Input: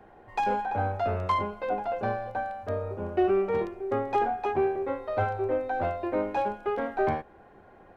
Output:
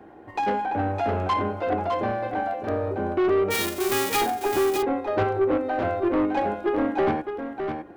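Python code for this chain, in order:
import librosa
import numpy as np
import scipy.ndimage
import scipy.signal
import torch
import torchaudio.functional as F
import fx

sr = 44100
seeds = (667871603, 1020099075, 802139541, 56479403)

p1 = fx.envelope_flatten(x, sr, power=0.1, at=(3.5, 4.2), fade=0.02)
p2 = scipy.signal.sosfilt(scipy.signal.butter(2, 58.0, 'highpass', fs=sr, output='sos'), p1)
p3 = fx.peak_eq(p2, sr, hz=300.0, db=12.5, octaves=0.48)
p4 = fx.level_steps(p3, sr, step_db=12)
p5 = p3 + (p4 * 10.0 ** (2.0 / 20.0))
p6 = 10.0 ** (-18.5 / 20.0) * np.tanh(p5 / 10.0 ** (-18.5 / 20.0))
y = p6 + fx.echo_single(p6, sr, ms=609, db=-6.5, dry=0)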